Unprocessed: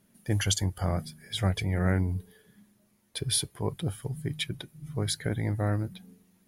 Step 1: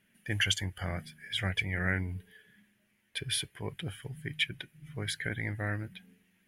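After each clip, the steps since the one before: high-order bell 2.2 kHz +14 dB 1.3 oct; trim -7.5 dB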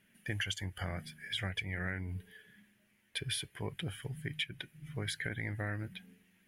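compression 5:1, threshold -35 dBFS, peak gain reduction 11.5 dB; trim +1 dB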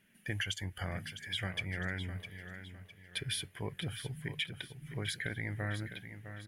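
feedback delay 657 ms, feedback 36%, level -10.5 dB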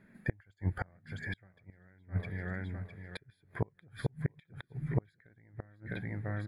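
inverted gate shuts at -29 dBFS, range -33 dB; boxcar filter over 15 samples; trim +11 dB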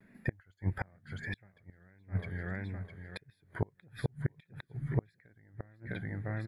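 vibrato 1.6 Hz 89 cents

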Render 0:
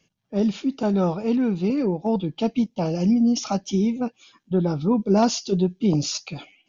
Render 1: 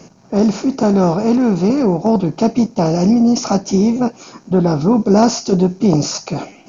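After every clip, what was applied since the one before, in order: spectral levelling over time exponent 0.6; peaking EQ 3.3 kHz -13.5 dB 0.58 oct; trim +5.5 dB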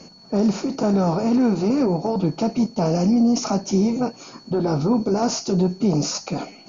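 peak limiter -8 dBFS, peak gain reduction 6.5 dB; whistle 4.4 kHz -43 dBFS; flange 0.32 Hz, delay 3.6 ms, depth 5 ms, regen -49%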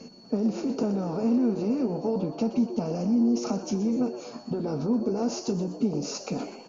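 compression, threshold -24 dBFS, peak gain reduction 10 dB; small resonant body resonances 240/440/2700 Hz, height 10 dB, ringing for 45 ms; frequency-shifting echo 123 ms, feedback 48%, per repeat +120 Hz, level -13 dB; trim -6 dB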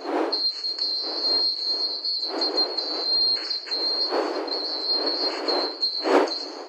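split-band scrambler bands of 4 kHz; wind noise 540 Hz -27 dBFS; brick-wall FIR high-pass 280 Hz

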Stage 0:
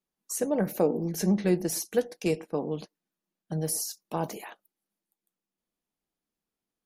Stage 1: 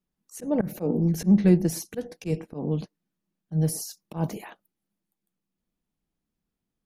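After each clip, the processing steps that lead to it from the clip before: tone controls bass +13 dB, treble -3 dB; slow attack 114 ms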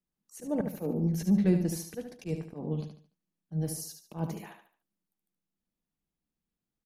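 feedback delay 73 ms, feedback 34%, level -7 dB; trim -6.5 dB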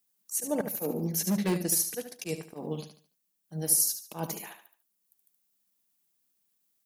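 hard clipper -19.5 dBFS, distortion -19 dB; transient shaper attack +1 dB, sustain -4 dB; RIAA curve recording; trim +4.5 dB

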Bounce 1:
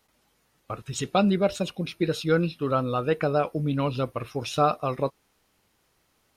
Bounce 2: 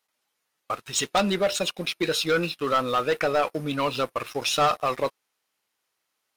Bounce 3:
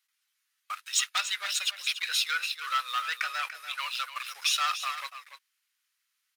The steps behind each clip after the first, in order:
high-pass 1 kHz 6 dB/octave; waveshaping leveller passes 3; trim -1.5 dB
high-pass 1.4 kHz 24 dB/octave; delay 289 ms -11 dB

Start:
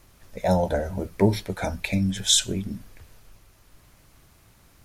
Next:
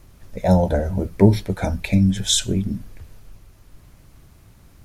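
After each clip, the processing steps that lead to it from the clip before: bass shelf 400 Hz +9 dB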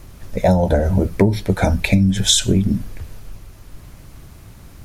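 compression 10:1, threshold -19 dBFS, peak gain reduction 13 dB; trim +8.5 dB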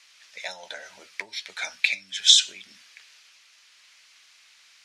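Butterworth band-pass 3.6 kHz, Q 0.87; trim +1.5 dB

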